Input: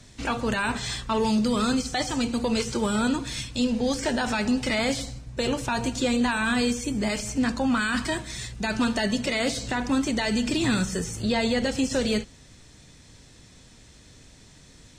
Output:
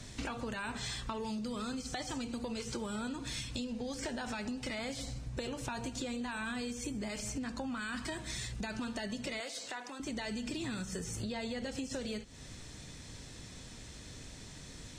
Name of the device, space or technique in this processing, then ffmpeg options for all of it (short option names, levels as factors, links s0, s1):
serial compression, leveller first: -filter_complex "[0:a]acompressor=threshold=0.0355:ratio=2,acompressor=threshold=0.0112:ratio=6,asettb=1/sr,asplit=3[s0][s1][s2];[s0]atrim=end=9.404[s3];[s1]atrim=start=9.4:end=10,asetpts=PTS-STARTPTS,afade=t=in:d=0.004:c=qsin,afade=t=out:st=0.596:d=0.004:c=qsin,highpass=530[s4];[s2]atrim=start=9.996[s5];[s3][s4]acrossfade=d=0.004:c1=hsin:c2=qsin[s6];[s6][s5]acrossfade=d=0.004:c1=qsin:c2=hsin,volume=1.26"